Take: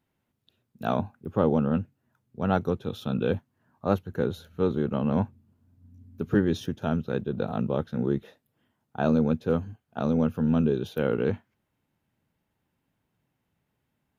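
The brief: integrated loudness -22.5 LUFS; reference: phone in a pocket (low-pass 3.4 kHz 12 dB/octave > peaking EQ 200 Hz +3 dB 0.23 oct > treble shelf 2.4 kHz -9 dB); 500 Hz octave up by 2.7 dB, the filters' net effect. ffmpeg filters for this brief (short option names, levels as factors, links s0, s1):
-af "lowpass=3400,equalizer=f=200:t=o:w=0.23:g=3,equalizer=f=500:t=o:g=3.5,highshelf=f=2400:g=-9,volume=1.5"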